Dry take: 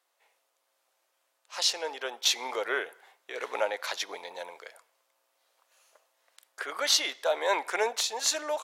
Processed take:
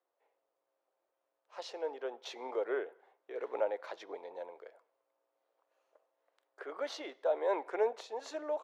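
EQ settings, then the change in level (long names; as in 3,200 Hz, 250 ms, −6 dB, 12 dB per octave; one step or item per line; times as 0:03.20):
resonant band-pass 390 Hz, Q 1.2
0.0 dB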